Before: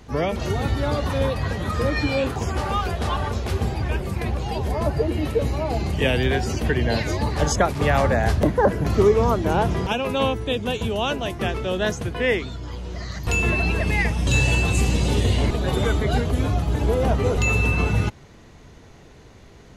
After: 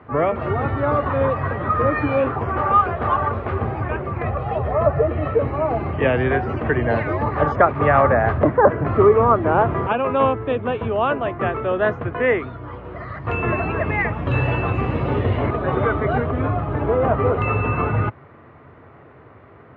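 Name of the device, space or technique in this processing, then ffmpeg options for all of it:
bass cabinet: -filter_complex "[0:a]highpass=frequency=87:width=0.5412,highpass=frequency=87:width=1.3066,equalizer=frequency=190:width_type=q:width=4:gain=-9,equalizer=frequency=620:width_type=q:width=4:gain=3,equalizer=frequency=1200:width_type=q:width=4:gain=9,lowpass=frequency=2100:width=0.5412,lowpass=frequency=2100:width=1.3066,asettb=1/sr,asplit=3[link_01][link_02][link_03];[link_01]atrim=end=4.224[link_04];[link_02]atrim=start=4.22:end=5.34,asetpts=PTS-STARTPTS,afade=type=in:duration=0.004:curve=qsin,afade=type=out:start_time=1.116:duration=0.004:curve=qsin,aecho=1:1:1.6:0.5,atrim=end_sample=49392[link_05];[link_03]atrim=start=5.336[link_06];[link_04][link_05]acrossfade=duration=0.004:curve1=hsin:curve2=qsin[link_07];[link_07][link_06]acrossfade=duration=0.004:curve1=qsin:curve2=hsin,volume=3dB"

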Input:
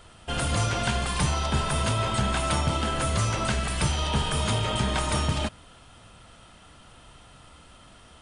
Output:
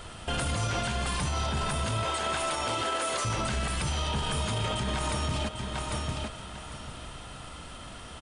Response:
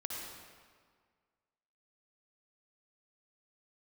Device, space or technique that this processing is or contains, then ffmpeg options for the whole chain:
stacked limiters: -filter_complex "[0:a]asettb=1/sr,asplit=3[link_01][link_02][link_03];[link_01]atrim=end=2.034[link_04];[link_02]atrim=start=2.03:end=3.25,asetpts=PTS-STARTPTS,afade=type=in:duration=0.004:curve=qsin,afade=type=out:start_time=1.216:duration=0.004:curve=qsin,highpass=frequency=330:width=0.5412,highpass=frequency=330:width=1.3066[link_05];[link_03]atrim=start=3.246[link_06];[link_04][link_05]acrossfade=duration=0.004:curve1=hsin:curve2=qsin[link_07];[link_07][link_06]acrossfade=duration=0.004:curve1=qsin:curve2=hsin,aecho=1:1:798|1596|2394:0.178|0.0427|0.0102,alimiter=limit=-19.5dB:level=0:latency=1:release=152,alimiter=level_in=1.5dB:limit=-24dB:level=0:latency=1:release=393,volume=-1.5dB,alimiter=level_in=5dB:limit=-24dB:level=0:latency=1:release=14,volume=-5dB,volume=7.5dB"

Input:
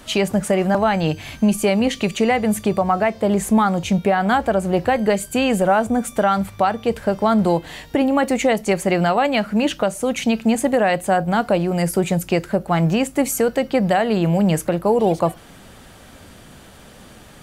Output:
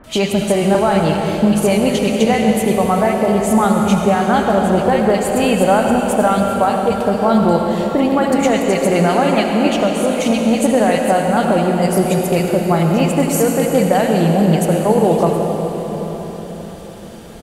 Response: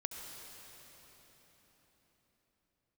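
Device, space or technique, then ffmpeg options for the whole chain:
cathedral: -filter_complex "[1:a]atrim=start_sample=2205[link_01];[0:a][link_01]afir=irnorm=-1:irlink=0,acrossover=split=1800[link_02][link_03];[link_03]adelay=40[link_04];[link_02][link_04]amix=inputs=2:normalize=0,volume=4.5dB"

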